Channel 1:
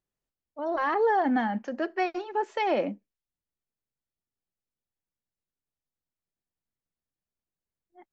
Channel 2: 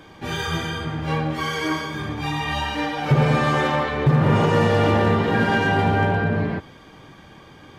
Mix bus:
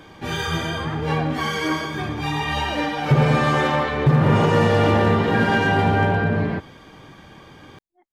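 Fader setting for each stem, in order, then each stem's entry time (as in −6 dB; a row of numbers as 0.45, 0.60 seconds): −7.5, +1.0 decibels; 0.00, 0.00 seconds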